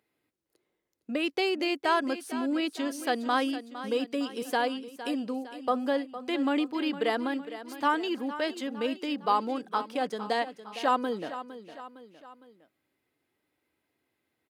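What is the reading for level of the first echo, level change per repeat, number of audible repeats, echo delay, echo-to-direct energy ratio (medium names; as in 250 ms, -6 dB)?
-13.0 dB, -6.0 dB, 3, 459 ms, -12.0 dB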